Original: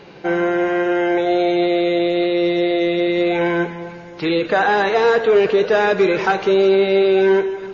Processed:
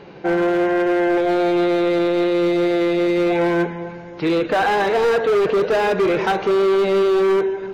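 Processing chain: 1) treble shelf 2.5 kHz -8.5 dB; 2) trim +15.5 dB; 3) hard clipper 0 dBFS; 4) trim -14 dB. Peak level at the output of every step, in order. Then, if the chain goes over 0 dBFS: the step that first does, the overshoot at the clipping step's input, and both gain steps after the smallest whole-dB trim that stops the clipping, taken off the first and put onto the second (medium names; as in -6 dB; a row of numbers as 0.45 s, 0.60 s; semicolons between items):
-6.0 dBFS, +9.5 dBFS, 0.0 dBFS, -14.0 dBFS; step 2, 9.5 dB; step 2 +5.5 dB, step 4 -4 dB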